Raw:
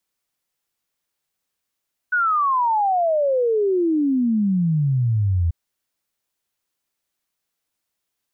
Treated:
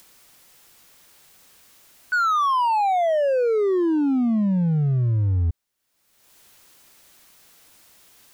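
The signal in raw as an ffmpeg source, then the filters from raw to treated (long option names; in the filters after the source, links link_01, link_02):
-f lavfi -i "aevalsrc='0.158*clip(min(t,3.39-t)/0.01,0,1)*sin(2*PI*1500*3.39/log(81/1500)*(exp(log(81/1500)*t/3.39)-1))':duration=3.39:sample_rate=44100"
-af "acompressor=mode=upward:threshold=-32dB:ratio=2.5,asoftclip=type=hard:threshold=-18dB"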